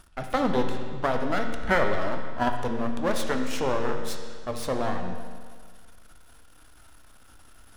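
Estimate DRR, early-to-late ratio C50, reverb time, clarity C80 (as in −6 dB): 3.5 dB, 5.5 dB, 1.8 s, 6.5 dB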